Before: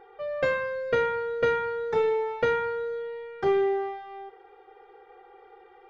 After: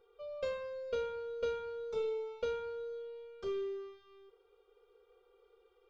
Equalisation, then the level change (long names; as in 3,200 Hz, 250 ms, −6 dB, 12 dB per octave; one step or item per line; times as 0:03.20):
phaser with its sweep stopped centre 330 Hz, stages 4
phaser with its sweep stopped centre 750 Hz, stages 4
−4.0 dB